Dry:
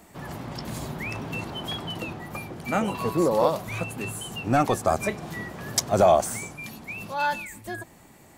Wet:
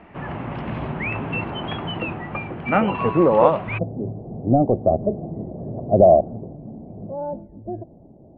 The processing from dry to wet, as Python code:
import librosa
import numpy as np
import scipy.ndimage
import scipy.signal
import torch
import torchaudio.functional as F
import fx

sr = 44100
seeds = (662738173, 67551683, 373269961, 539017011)

y = fx.ellip_lowpass(x, sr, hz=fx.steps((0.0, 2800.0), (3.77, 660.0)), order=4, stop_db=80)
y = y * librosa.db_to_amplitude(7.0)